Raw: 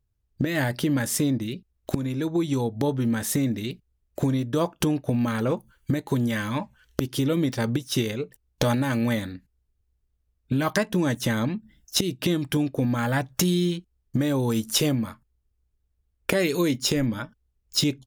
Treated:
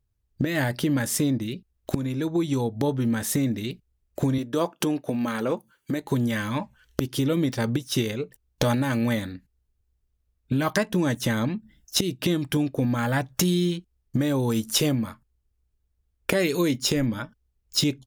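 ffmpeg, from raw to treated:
-filter_complex "[0:a]asettb=1/sr,asplit=3[a][b][c];[a]atrim=end=4.384[d];[b]atrim=start=4.38:end=6.02,asetpts=PTS-STARTPTS,afade=t=in:d=0.004:c=qsin,afade=t=out:st=1.636:d=0.004:c=qsin,highpass=210[e];[c]atrim=start=6.016[f];[d][e]acrossfade=d=0.004:c1=hsin:c2=qsin[g];[g][f]acrossfade=d=0.004:c1=qsin:c2=hsin"

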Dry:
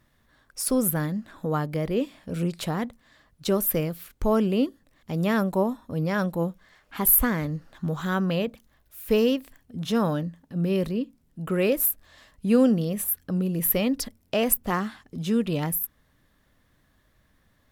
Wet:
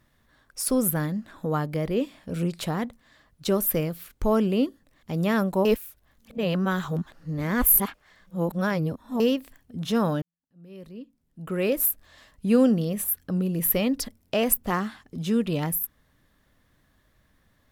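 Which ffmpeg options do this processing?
-filter_complex "[0:a]asplit=4[a][b][c][d];[a]atrim=end=5.652[e];[b]atrim=start=5.648:end=9.202,asetpts=PTS-STARTPTS,areverse[f];[c]atrim=start=9.198:end=10.22,asetpts=PTS-STARTPTS,afade=t=out:st=1.018:d=0.004:c=hsin[g];[d]atrim=start=10.22,asetpts=PTS-STARTPTS,afade=t=in:d=1.61:c=qua[h];[e][f]acrossfade=d=0.004:c1=hsin:c2=hsin[i];[g][h]concat=n=2:v=0:a=1[j];[i][j]acrossfade=d=0.004:c1=hsin:c2=hsin"

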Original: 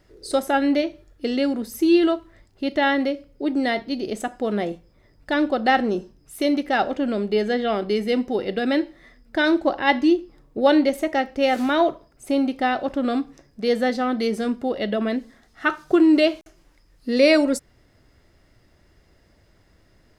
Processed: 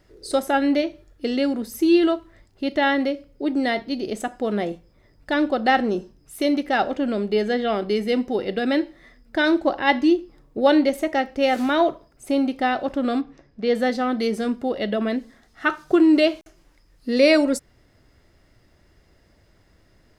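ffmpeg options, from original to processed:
-filter_complex "[0:a]asettb=1/sr,asplit=3[a][b][c];[a]atrim=end=13.214[d];[b]atrim=start=13.21:end=13.75,asetpts=PTS-STARTPTS,afade=t=in:d=0.004:c=qsin,afade=t=out:st=0.536:d=0.004:c=qsin,lowpass=3.8k[e];[c]atrim=start=13.746[f];[d][e]acrossfade=d=0.004:c1=hsin:c2=qsin[g];[g][f]acrossfade=d=0.004:c1=qsin:c2=hsin"

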